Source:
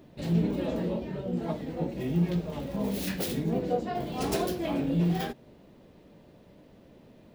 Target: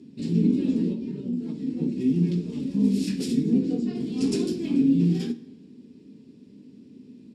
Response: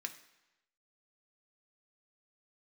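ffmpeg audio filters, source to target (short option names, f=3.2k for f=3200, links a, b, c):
-filter_complex "[0:a]firequalizer=gain_entry='entry(420,0);entry(640,-24);entry(5500,1)':delay=0.05:min_phase=1,asettb=1/sr,asplit=3[a][b][c];[a]atrim=end=0.924[d];[b]atrim=start=0.92:end=1.78,asetpts=PTS-STARTPTS,afade=t=in:d=0.004:c=qsin,afade=t=out:st=0.856:d=0.004:c=qsin,acompressor=threshold=-34dB:ratio=6[e];[c]atrim=start=1.776[f];[d][e]acrossfade=d=0.004:c1=hsin:c2=qsin[g];[g][f]acrossfade=d=0.004:c1=qsin:c2=hsin,highpass=110,equalizer=f=250:t=q:w=4:g=9,equalizer=f=500:t=q:w=4:g=-7,equalizer=f=930:t=q:w=4:g=4,equalizer=f=2.6k:t=q:w=4:g=5,equalizer=f=6.3k:t=q:w=4:g=-9,lowpass=f=7.9k:w=0.5412,lowpass=f=7.9k:w=1.3066,asplit=2[h][i];[1:a]atrim=start_sample=2205,asetrate=41454,aresample=44100[j];[i][j]afir=irnorm=-1:irlink=0,volume=3.5dB[k];[h][k]amix=inputs=2:normalize=0"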